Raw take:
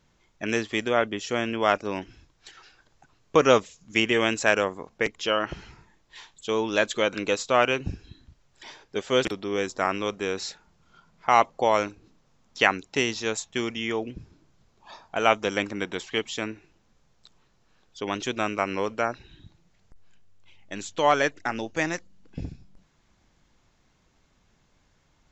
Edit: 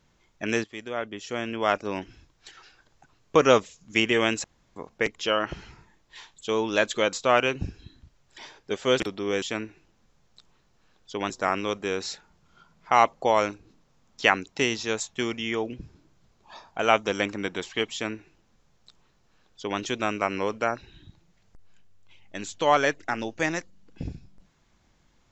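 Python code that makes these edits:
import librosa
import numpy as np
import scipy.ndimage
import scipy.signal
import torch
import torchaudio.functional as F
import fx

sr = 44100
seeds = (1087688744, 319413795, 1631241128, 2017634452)

y = fx.edit(x, sr, fx.fade_in_from(start_s=0.64, length_s=1.37, floor_db=-14.5),
    fx.room_tone_fill(start_s=4.44, length_s=0.32),
    fx.cut(start_s=7.13, length_s=0.25),
    fx.duplicate(start_s=16.29, length_s=1.88, to_s=9.67), tone=tone)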